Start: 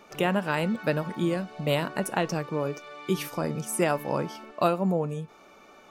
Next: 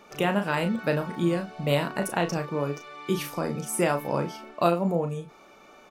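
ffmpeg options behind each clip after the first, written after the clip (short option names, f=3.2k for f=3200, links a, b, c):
-filter_complex "[0:a]asplit=2[a][b];[b]adelay=35,volume=-7dB[c];[a][c]amix=inputs=2:normalize=0"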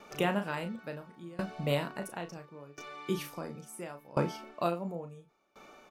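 -af "aeval=exprs='val(0)*pow(10,-24*if(lt(mod(0.72*n/s,1),2*abs(0.72)/1000),1-mod(0.72*n/s,1)/(2*abs(0.72)/1000),(mod(0.72*n/s,1)-2*abs(0.72)/1000)/(1-2*abs(0.72)/1000))/20)':c=same"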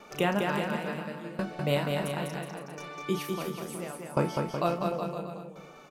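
-af "aecho=1:1:200|370|514.5|637.3|741.7:0.631|0.398|0.251|0.158|0.1,volume=2.5dB"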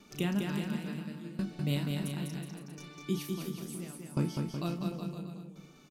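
-af "firequalizer=gain_entry='entry(280,0);entry(520,-16);entry(3800,-2)':delay=0.05:min_phase=1"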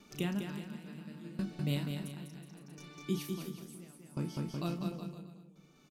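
-af "tremolo=f=0.64:d=0.63,volume=-1.5dB"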